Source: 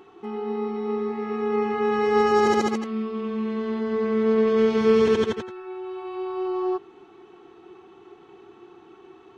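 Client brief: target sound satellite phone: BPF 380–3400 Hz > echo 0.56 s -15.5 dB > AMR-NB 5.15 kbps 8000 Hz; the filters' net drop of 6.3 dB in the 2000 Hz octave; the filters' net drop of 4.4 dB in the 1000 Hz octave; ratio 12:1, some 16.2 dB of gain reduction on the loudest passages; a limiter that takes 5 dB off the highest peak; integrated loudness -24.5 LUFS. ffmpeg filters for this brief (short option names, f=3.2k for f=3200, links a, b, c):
-af "equalizer=f=1k:t=o:g=-4,equalizer=f=2k:t=o:g=-6,acompressor=threshold=-32dB:ratio=12,alimiter=level_in=6dB:limit=-24dB:level=0:latency=1,volume=-6dB,highpass=380,lowpass=3.4k,aecho=1:1:560:0.168,volume=17dB" -ar 8000 -c:a libopencore_amrnb -b:a 5150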